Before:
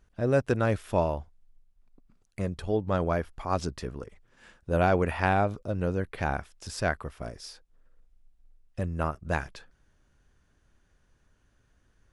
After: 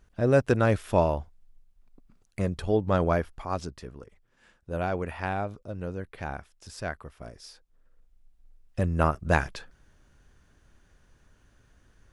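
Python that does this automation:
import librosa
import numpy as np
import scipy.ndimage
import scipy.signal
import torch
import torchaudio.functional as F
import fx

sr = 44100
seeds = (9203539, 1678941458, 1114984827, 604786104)

y = fx.gain(x, sr, db=fx.line((3.14, 3.0), (3.77, -6.0), (7.1, -6.0), (9.03, 6.0)))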